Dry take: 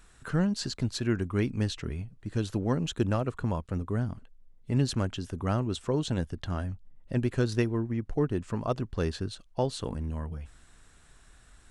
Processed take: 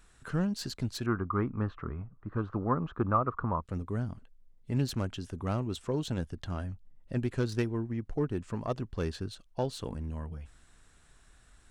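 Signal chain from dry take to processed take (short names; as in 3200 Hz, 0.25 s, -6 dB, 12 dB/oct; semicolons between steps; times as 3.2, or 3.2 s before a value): self-modulated delay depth 0.077 ms; 1.06–3.62 synth low-pass 1200 Hz, resonance Q 6.7; gain -3.5 dB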